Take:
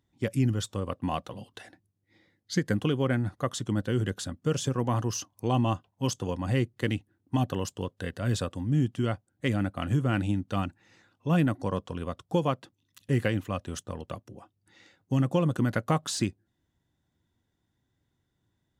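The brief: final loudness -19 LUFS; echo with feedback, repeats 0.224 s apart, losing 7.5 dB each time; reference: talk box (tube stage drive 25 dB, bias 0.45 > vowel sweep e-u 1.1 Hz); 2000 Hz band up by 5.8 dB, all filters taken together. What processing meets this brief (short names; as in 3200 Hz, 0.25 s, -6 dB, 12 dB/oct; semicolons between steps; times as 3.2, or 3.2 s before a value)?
bell 2000 Hz +7.5 dB; feedback echo 0.224 s, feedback 42%, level -7.5 dB; tube stage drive 25 dB, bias 0.45; vowel sweep e-u 1.1 Hz; gain +26.5 dB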